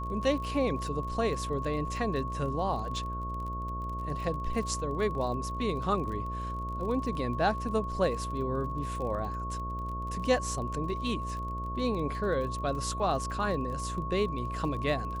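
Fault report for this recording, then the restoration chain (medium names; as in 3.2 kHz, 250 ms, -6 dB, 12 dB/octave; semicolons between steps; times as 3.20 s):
buzz 60 Hz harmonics 11 -37 dBFS
crackle 30 per s -38 dBFS
whine 1.1 kHz -36 dBFS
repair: de-click; de-hum 60 Hz, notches 11; band-stop 1.1 kHz, Q 30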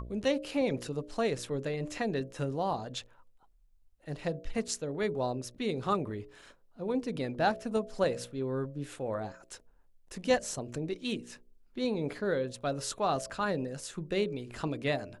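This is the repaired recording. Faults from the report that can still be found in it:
nothing left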